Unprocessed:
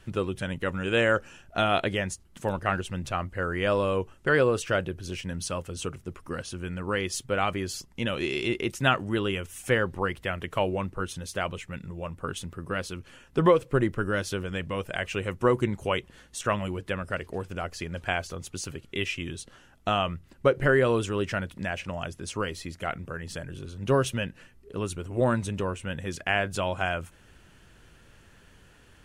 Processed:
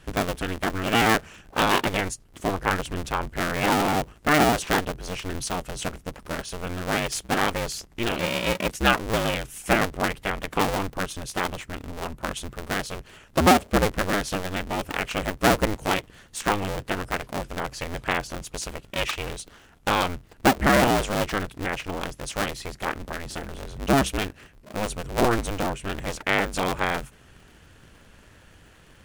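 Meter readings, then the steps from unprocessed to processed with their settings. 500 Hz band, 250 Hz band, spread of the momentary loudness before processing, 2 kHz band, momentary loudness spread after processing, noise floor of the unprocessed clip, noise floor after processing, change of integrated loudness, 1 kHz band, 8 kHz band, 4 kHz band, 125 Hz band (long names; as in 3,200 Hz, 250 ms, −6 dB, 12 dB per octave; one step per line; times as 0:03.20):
0.0 dB, +4.0 dB, 12 LU, +4.0 dB, 12 LU, −56 dBFS, −53 dBFS, +3.5 dB, +6.5 dB, +6.5 dB, +5.5 dB, +0.5 dB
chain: sub-harmonics by changed cycles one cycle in 2, inverted
level +3 dB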